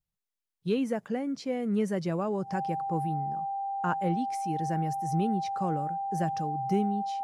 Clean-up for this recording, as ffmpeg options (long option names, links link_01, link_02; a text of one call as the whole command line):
ffmpeg -i in.wav -af "bandreject=frequency=790:width=30" out.wav